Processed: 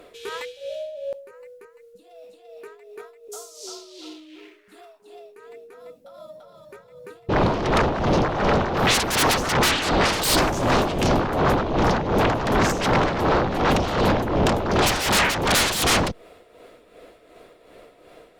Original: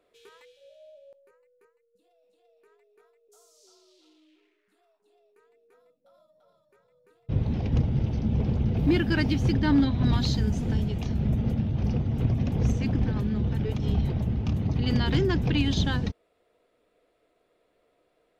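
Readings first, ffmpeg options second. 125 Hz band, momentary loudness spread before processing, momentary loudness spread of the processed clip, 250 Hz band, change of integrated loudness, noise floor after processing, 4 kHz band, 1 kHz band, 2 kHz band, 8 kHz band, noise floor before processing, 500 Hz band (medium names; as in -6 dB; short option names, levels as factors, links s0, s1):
-2.5 dB, 5 LU, 16 LU, +1.5 dB, +5.5 dB, -53 dBFS, +12.5 dB, +19.0 dB, +14.0 dB, no reading, -71 dBFS, +13.0 dB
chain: -af "aeval=exprs='0.188*sin(PI/2*8.91*val(0)/0.188)':c=same,tremolo=f=2.7:d=0.61" -ar 48000 -c:a libopus -b:a 64k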